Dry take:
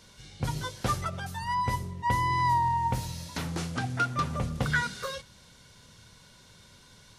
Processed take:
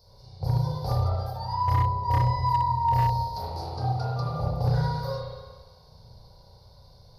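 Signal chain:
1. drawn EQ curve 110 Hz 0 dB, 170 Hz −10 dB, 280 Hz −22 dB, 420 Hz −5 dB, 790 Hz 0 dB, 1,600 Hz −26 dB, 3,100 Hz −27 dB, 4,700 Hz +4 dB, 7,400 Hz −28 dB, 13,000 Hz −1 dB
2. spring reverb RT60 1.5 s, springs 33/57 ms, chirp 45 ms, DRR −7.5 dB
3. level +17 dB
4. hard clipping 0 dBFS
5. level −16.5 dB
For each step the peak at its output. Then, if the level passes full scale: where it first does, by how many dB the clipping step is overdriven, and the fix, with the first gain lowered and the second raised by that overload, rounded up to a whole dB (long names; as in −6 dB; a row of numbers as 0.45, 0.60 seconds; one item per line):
−19.0, −10.5, +6.5, 0.0, −16.5 dBFS
step 3, 6.5 dB
step 3 +10 dB, step 5 −9.5 dB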